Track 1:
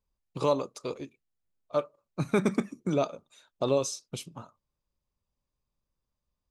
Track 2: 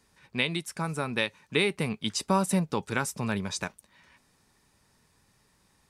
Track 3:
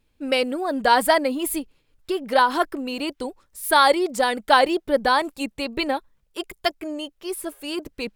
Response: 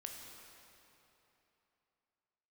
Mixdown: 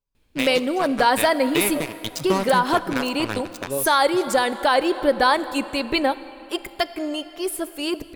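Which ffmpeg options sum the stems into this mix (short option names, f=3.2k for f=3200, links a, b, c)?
-filter_complex "[0:a]aecho=1:1:7.1:0.65,volume=-5dB[a];[1:a]acrusher=bits=3:mix=0:aa=0.5,volume=-0.5dB,asplit=3[b][c][d];[c]volume=-7.5dB[e];[2:a]adelay=150,volume=1.5dB,asplit=2[f][g];[g]volume=-6.5dB[h];[d]apad=whole_len=287186[i];[a][i]sidechaincompress=threshold=-32dB:ratio=8:attack=6.1:release=123[j];[3:a]atrim=start_sample=2205[k];[e][h]amix=inputs=2:normalize=0[l];[l][k]afir=irnorm=-1:irlink=0[m];[j][b][f][m]amix=inputs=4:normalize=0,alimiter=limit=-7.5dB:level=0:latency=1:release=200"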